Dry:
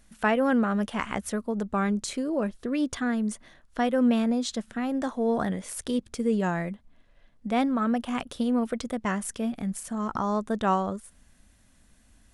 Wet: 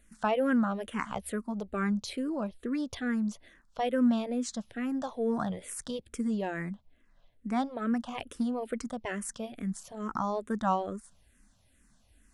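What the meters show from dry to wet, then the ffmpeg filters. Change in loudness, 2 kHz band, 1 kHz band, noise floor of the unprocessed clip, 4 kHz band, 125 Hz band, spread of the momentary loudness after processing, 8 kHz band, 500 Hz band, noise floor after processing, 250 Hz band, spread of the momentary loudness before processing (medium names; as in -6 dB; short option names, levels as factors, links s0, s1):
-4.5 dB, -5.5 dB, -4.5 dB, -60 dBFS, -5.5 dB, -5.0 dB, 11 LU, -5.0 dB, -5.0 dB, -66 dBFS, -4.5 dB, 9 LU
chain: -filter_complex "[0:a]asplit=2[s0][s1];[s1]afreqshift=-2.3[s2];[s0][s2]amix=inputs=2:normalize=1,volume=0.794"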